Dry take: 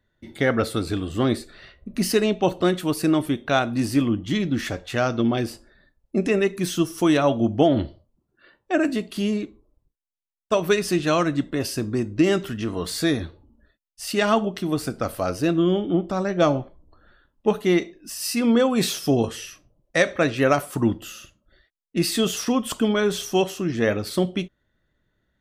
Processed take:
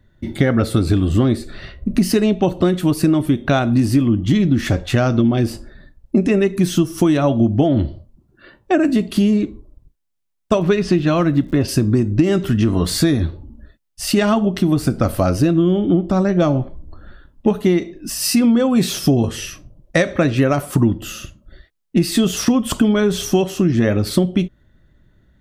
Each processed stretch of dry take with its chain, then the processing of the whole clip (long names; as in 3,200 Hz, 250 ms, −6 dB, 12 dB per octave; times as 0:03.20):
0:10.58–0:11.67: low-pass filter 4,400 Hz + surface crackle 120 per second −39 dBFS
whole clip: low-shelf EQ 330 Hz +11.5 dB; notch filter 460 Hz, Q 12; downward compressor, threshold −20 dBFS; level +8 dB